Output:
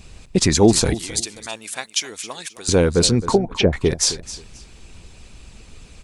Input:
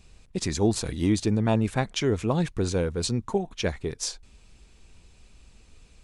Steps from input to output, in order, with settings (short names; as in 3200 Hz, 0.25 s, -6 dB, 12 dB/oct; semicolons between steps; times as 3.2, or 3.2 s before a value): 0.94–2.69 differentiator; 3.22–3.73 treble ducked by the level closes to 500 Hz, closed at -21.5 dBFS; harmonic-percussive split percussive +6 dB; in parallel at -1 dB: limiter -17 dBFS, peak gain reduction 9.5 dB; on the sum: feedback echo 0.265 s, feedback 23%, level -15 dB; gain +3 dB